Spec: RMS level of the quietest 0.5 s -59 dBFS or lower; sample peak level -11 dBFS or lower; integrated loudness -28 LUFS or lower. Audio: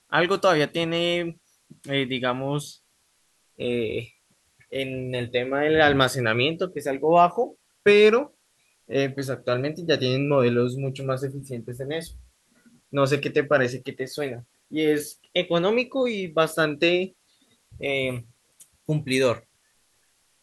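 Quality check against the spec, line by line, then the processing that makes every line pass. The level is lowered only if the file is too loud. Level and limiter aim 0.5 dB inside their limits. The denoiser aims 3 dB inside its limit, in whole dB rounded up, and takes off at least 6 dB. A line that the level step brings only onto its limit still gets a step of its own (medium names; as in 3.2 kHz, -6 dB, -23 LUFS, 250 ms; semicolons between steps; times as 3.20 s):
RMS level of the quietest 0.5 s -66 dBFS: pass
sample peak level -4.0 dBFS: fail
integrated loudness -24.0 LUFS: fail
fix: trim -4.5 dB; peak limiter -11.5 dBFS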